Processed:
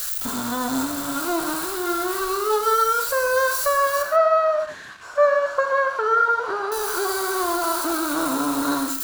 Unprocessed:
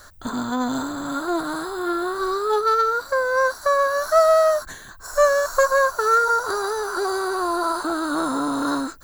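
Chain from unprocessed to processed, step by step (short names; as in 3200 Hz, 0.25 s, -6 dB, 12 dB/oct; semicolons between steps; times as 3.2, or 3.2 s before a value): switching spikes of -19.5 dBFS; 4.02–6.72 BPF 130–2200 Hz; non-linear reverb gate 0.16 s flat, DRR 5 dB; gain -1.5 dB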